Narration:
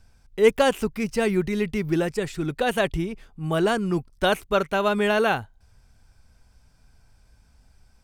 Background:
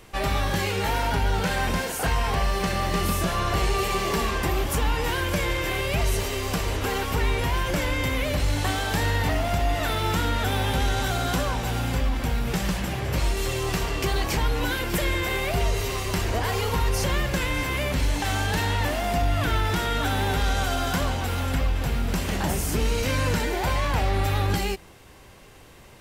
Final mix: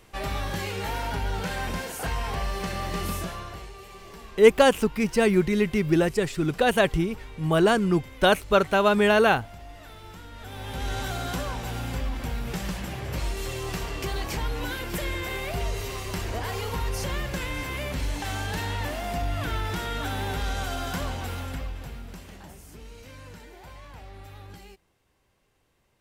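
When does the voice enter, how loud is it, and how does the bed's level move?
4.00 s, +2.0 dB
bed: 3.16 s -5.5 dB
3.73 s -20 dB
10.29 s -20 dB
10.93 s -5.5 dB
21.28 s -5.5 dB
22.55 s -21 dB

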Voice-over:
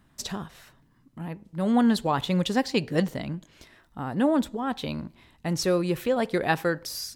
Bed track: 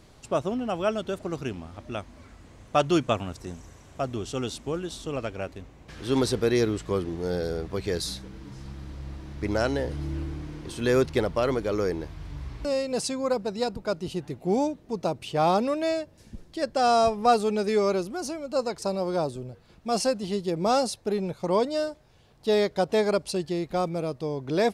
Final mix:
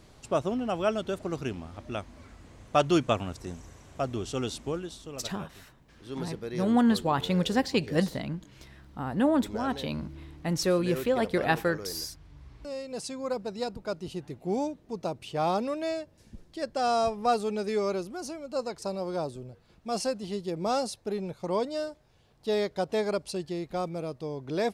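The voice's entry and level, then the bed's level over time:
5.00 s, -1.5 dB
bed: 4.67 s -1 dB
5.32 s -13.5 dB
12.34 s -13.5 dB
13.4 s -5 dB

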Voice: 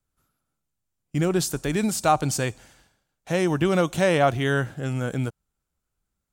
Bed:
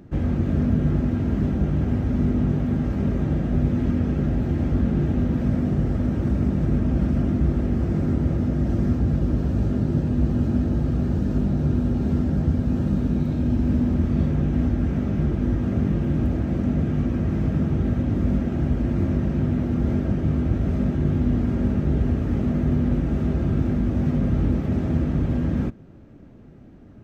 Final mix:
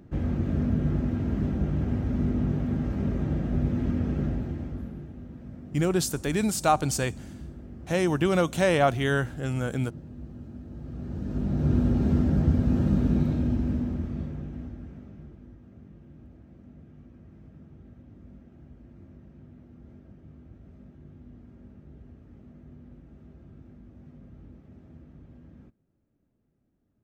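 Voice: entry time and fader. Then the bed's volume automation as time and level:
4.60 s, -2.0 dB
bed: 4.25 s -5 dB
5.12 s -20.5 dB
10.64 s -20.5 dB
11.74 s -1 dB
13.21 s -1 dB
15.6 s -27.5 dB

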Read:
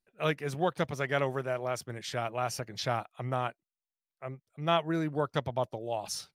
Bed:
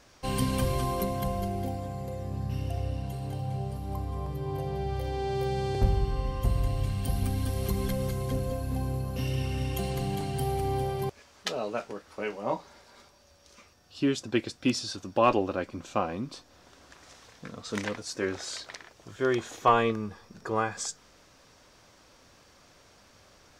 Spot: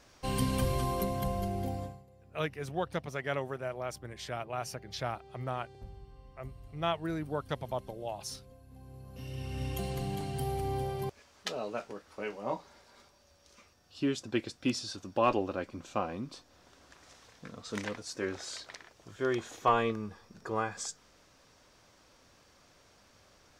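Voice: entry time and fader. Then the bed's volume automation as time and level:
2.15 s, -4.5 dB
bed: 1.84 s -2.5 dB
2.06 s -23.5 dB
8.69 s -23.5 dB
9.65 s -4.5 dB

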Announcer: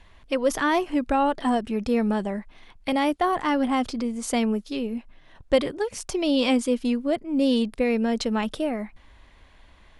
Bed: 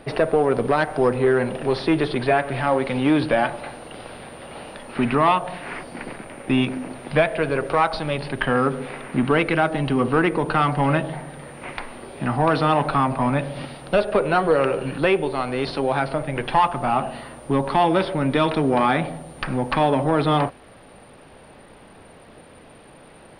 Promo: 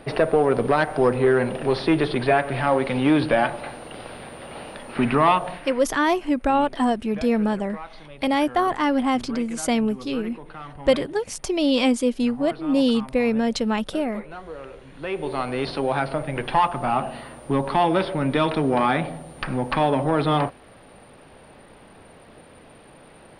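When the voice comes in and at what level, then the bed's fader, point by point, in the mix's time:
5.35 s, +2.0 dB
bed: 5.49 s 0 dB
5.94 s -19 dB
14.88 s -19 dB
15.32 s -1.5 dB

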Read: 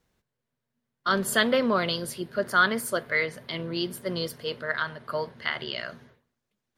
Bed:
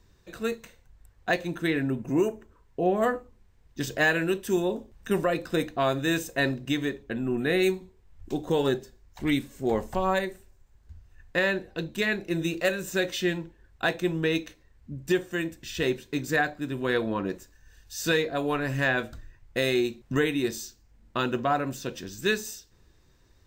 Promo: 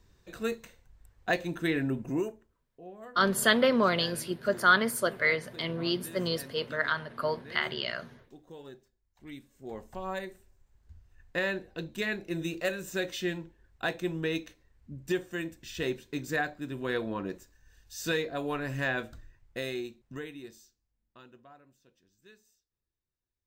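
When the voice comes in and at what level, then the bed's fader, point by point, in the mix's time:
2.10 s, -0.5 dB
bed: 2.05 s -2.5 dB
2.73 s -22.5 dB
9.09 s -22.5 dB
10.54 s -5.5 dB
19.25 s -5.5 dB
21.7 s -31.5 dB

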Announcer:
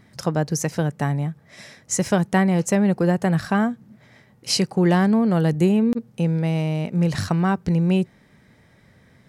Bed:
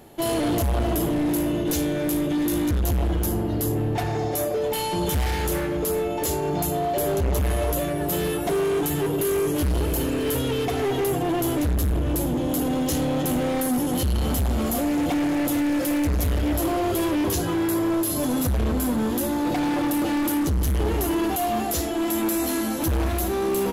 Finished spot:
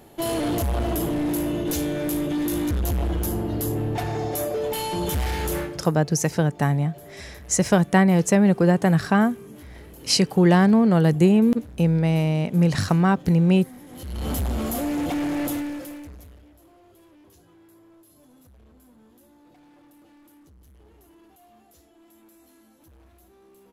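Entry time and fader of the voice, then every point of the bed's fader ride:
5.60 s, +1.5 dB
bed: 5.61 s -1.5 dB
5.91 s -21 dB
13.86 s -21 dB
14.29 s -2.5 dB
15.49 s -2.5 dB
16.54 s -31 dB

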